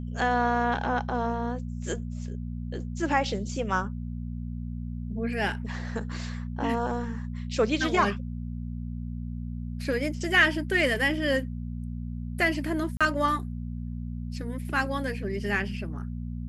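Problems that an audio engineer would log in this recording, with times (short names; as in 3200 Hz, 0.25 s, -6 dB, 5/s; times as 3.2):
hum 60 Hz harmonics 4 -34 dBFS
12.97–13.01 gap 36 ms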